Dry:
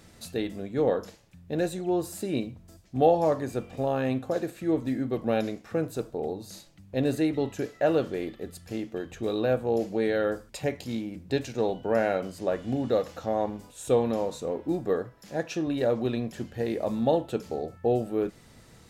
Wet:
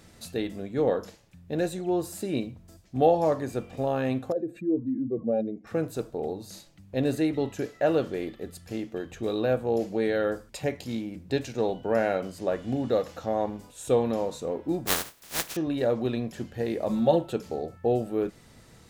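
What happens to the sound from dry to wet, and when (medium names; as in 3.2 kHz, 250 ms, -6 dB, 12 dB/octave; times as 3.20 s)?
4.32–5.67 s: spectral contrast enhancement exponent 2
14.86–15.55 s: spectral contrast reduction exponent 0.16
16.89–17.33 s: comb 5.4 ms, depth 75%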